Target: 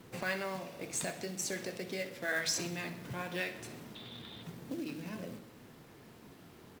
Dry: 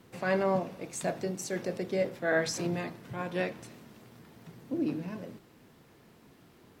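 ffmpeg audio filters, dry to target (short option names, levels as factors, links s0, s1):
-filter_complex "[0:a]asettb=1/sr,asplit=3[s0][s1][s2];[s0]atrim=end=3.954[s3];[s1]atrim=start=3.95:end=4.43,asetpts=PTS-STARTPTS,afade=t=in:d=0.004:c=qsin,afade=t=out:st=0.476:d=0.004:c=qsin,lowpass=f=3600:t=q:w=14[s4];[s2]atrim=start=4.426[s5];[s3][s4]acrossfade=d=0.004:c1=hsin:c2=qsin[s6];[s6][s5]acrossfade=d=0.004:c1=qsin:c2=hsin,aecho=1:1:63|126|189|252|315:0.2|0.104|0.054|0.0281|0.0146,acrossover=split=1700[s7][s8];[s7]acompressor=threshold=0.00891:ratio=6[s9];[s9][s8]amix=inputs=2:normalize=0,acrusher=bits=4:mode=log:mix=0:aa=0.000001,flanger=delay=6:depth=9.5:regen=-76:speed=0.51:shape=triangular,volume=2.24"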